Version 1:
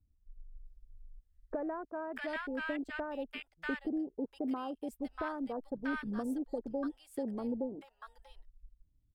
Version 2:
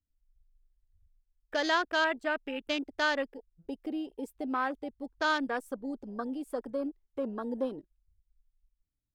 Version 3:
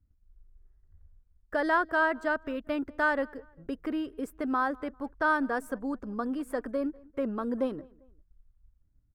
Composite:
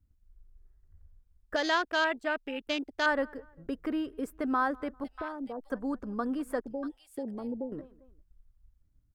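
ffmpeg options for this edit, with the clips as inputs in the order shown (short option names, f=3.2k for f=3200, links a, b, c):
-filter_complex "[0:a]asplit=2[a][b];[2:a]asplit=4[c][d][e][f];[c]atrim=end=1.562[g];[1:a]atrim=start=1.558:end=3.062[h];[d]atrim=start=3.058:end=5.042[i];[a]atrim=start=5.038:end=5.702[j];[e]atrim=start=5.698:end=6.602[k];[b]atrim=start=6.598:end=7.722[l];[f]atrim=start=7.718[m];[g][h]acrossfade=d=0.004:c1=hsin:c2=hsin[n];[n][i]acrossfade=d=0.004:c1=hsin:c2=hsin[o];[o][j]acrossfade=d=0.004:c1=hsin:c2=hsin[p];[p][k]acrossfade=d=0.004:c1=hsin:c2=hsin[q];[q][l]acrossfade=d=0.004:c1=hsin:c2=hsin[r];[r][m]acrossfade=d=0.004:c1=hsin:c2=hsin"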